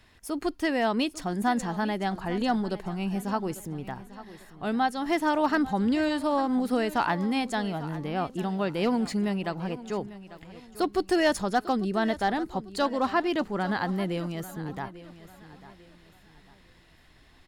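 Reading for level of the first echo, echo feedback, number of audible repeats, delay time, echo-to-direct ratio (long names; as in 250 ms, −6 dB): −16.0 dB, 35%, 3, 846 ms, −15.5 dB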